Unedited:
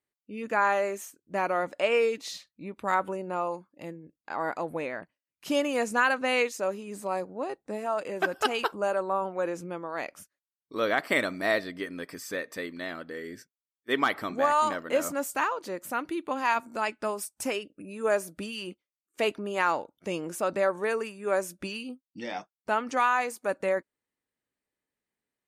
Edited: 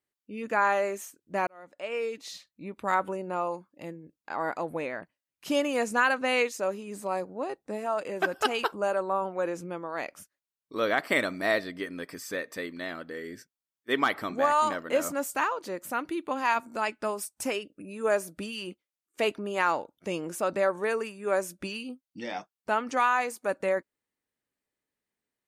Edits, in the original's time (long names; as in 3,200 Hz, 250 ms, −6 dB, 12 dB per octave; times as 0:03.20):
0:01.47–0:02.71: fade in